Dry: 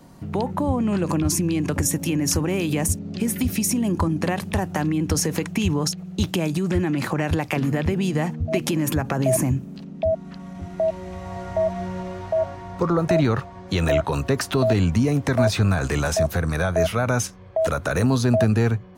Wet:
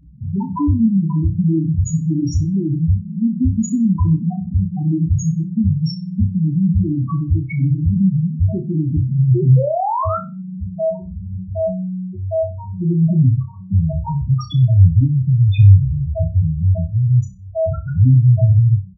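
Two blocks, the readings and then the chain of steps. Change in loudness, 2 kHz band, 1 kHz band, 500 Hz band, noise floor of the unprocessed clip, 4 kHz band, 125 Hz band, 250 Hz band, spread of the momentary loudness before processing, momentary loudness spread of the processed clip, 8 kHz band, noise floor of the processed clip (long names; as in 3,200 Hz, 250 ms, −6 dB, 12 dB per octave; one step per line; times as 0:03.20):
+5.5 dB, below −15 dB, +1.0 dB, −2.5 dB, −40 dBFS, can't be measured, +10.5 dB, +4.0 dB, 8 LU, 10 LU, below −10 dB, −32 dBFS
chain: dynamic equaliser 110 Hz, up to +5 dB, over −34 dBFS, Q 2.3
comb filter 0.9 ms, depth 61%
in parallel at −1.5 dB: downward compressor 6 to 1, threshold −25 dBFS, peak gain reduction 15.5 dB
on the sum: sound drawn into the spectrogram rise, 0:09.33–0:10.18, 330–1,400 Hz −21 dBFS
dead-zone distortion −48.5 dBFS
mains hum 60 Hz, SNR 30 dB
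spectral peaks only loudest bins 2
flutter between parallel walls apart 5.3 metres, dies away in 0.27 s
level +3 dB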